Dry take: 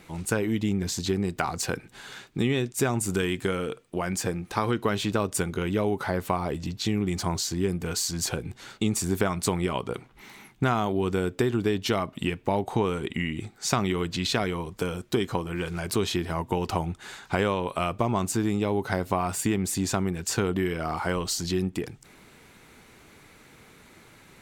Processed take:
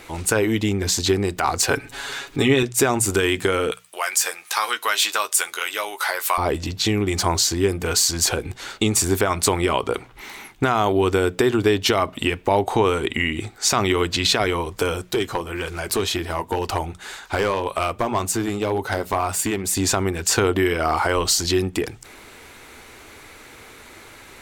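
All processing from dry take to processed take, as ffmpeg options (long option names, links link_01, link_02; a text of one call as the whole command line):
ffmpeg -i in.wav -filter_complex "[0:a]asettb=1/sr,asplit=3[link_01][link_02][link_03];[link_01]atrim=end=1.704[link_04];[link_02]atrim=start=1.7:end=2.63,asetpts=PTS-STARTPTS,afade=type=in:duration=0.004:curve=qsin,afade=type=out:start_time=0.926:duration=0.004:curve=qsin,aecho=1:1:7.2:0.78,atrim=end_sample=41013,acompressor=mode=upward:threshold=-39dB:ratio=2.5:attack=3.2:release=140:knee=2.83:detection=peak[link_05];[link_03]atrim=start=2.626[link_06];[link_04][link_05]acrossfade=duration=0.004:curve1=hsin:curve2=qsin[link_07];[link_07][link_06]acrossfade=duration=0.004:curve1=qsin:curve2=hsin,asettb=1/sr,asplit=3[link_08][link_09][link_10];[link_08]atrim=end=3.714[link_11];[link_09]atrim=start=3.71:end=6.38,asetpts=PTS-STARTPTS,afade=type=in:duration=0.004:curve=qsin,afade=type=out:start_time=2.666:duration=0.004:curve=qsin,highpass=1100,aemphasis=mode=production:type=cd,asplit=2[link_12][link_13];[link_13]adelay=13,volume=-8dB[link_14];[link_12][link_14]amix=inputs=2:normalize=0,atrim=end_sample=117747[link_15];[link_10]atrim=start=6.376[link_16];[link_11][link_15]acrossfade=duration=0.004:curve1=hsin:curve2=qsin[link_17];[link_17][link_16]acrossfade=duration=0.004:curve1=qsin:curve2=hsin,asettb=1/sr,asplit=3[link_18][link_19][link_20];[link_18]atrim=end=15.114[link_21];[link_19]atrim=start=15.11:end=19.77,asetpts=PTS-STARTPTS,afade=type=in:duration=0.004:curve=qsin,afade=type=out:start_time=4.656:duration=0.004:curve=qsin,highshelf=frequency=11000:gain=4.5,flanger=delay=1:depth=5:regen=-64:speed=1.9:shape=triangular,asoftclip=type=hard:threshold=-23dB[link_22];[link_20]atrim=start=19.766[link_23];[link_21][link_22]acrossfade=duration=0.004:curve1=hsin:curve2=qsin[link_24];[link_24][link_23]acrossfade=duration=0.004:curve1=qsin:curve2=hsin,equalizer=frequency=170:width_type=o:width=0.98:gain=-12.5,bandreject=frequency=60:width_type=h:width=6,bandreject=frequency=120:width_type=h:width=6,bandreject=frequency=180:width_type=h:width=6,alimiter=level_in=16.5dB:limit=-1dB:release=50:level=0:latency=1,volume=-6dB" out.wav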